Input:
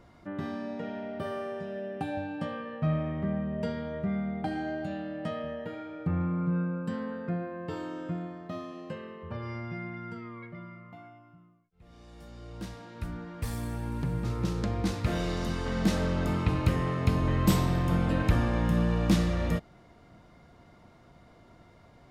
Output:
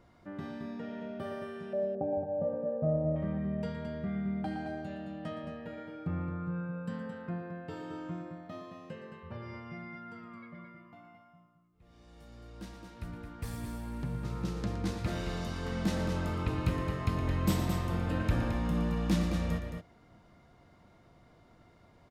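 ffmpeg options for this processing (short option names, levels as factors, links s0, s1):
-filter_complex "[0:a]asettb=1/sr,asplit=3[s0][s1][s2];[s0]atrim=end=1.734[s3];[s1]atrim=start=1.73:end=3.16,asetpts=PTS-STARTPTS,afade=t=in:d=0.004:c=qsin,afade=t=out:st=1.426:d=0.004:c=qsin,lowpass=f=580:t=q:w=4.5[s4];[s2]atrim=start=3.156[s5];[s3][s4]acrossfade=d=0.004:c1=hsin:c2=qsin[s6];[s6][s5]acrossfade=d=0.004:c1=qsin:c2=hsin,aecho=1:1:116.6|218.7:0.282|0.447,volume=0.531"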